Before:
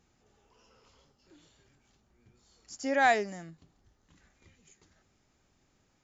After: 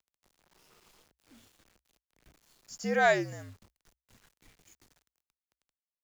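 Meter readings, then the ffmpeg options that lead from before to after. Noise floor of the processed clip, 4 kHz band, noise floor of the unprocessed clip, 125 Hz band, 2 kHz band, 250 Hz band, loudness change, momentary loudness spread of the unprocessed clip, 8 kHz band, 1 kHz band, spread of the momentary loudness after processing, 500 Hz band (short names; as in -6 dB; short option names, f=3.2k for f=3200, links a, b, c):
under -85 dBFS, 0.0 dB, -72 dBFS, +8.0 dB, 0.0 dB, +0.5 dB, 0.0 dB, 17 LU, n/a, -3.0 dB, 16 LU, +2.0 dB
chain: -af "acrusher=bits=9:mix=0:aa=0.000001,afreqshift=-65"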